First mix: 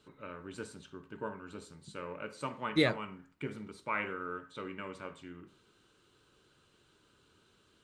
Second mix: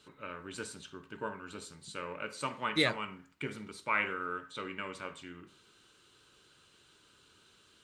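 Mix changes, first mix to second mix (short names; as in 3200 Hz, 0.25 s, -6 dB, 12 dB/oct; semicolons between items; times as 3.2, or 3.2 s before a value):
first voice +3.5 dB; master: add tilt shelf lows -4.5 dB, about 1300 Hz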